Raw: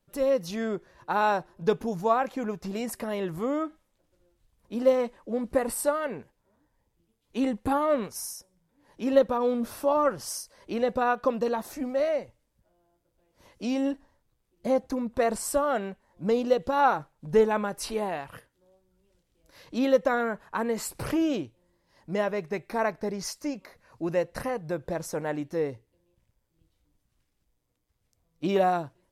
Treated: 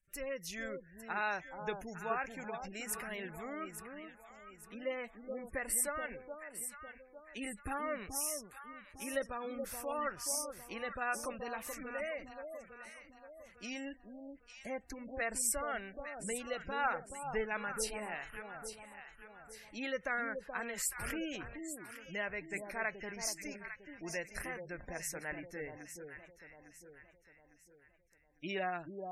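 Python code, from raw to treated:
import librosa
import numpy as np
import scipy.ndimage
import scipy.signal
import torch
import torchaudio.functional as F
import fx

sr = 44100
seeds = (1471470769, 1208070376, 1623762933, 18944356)

y = fx.graphic_eq(x, sr, hz=(125, 250, 500, 1000, 2000, 4000, 8000), db=(-12, -11, -11, -11, 6, -7, 4))
y = fx.echo_alternate(y, sr, ms=427, hz=1000.0, feedback_pct=63, wet_db=-5.5)
y = fx.spec_gate(y, sr, threshold_db=-25, keep='strong')
y = F.gain(torch.from_numpy(y), -2.0).numpy()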